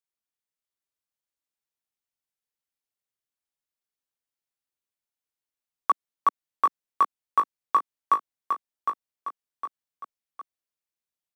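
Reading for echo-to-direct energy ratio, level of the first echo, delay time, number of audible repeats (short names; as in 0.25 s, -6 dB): -4.5 dB, -5.5 dB, 0.759 s, 3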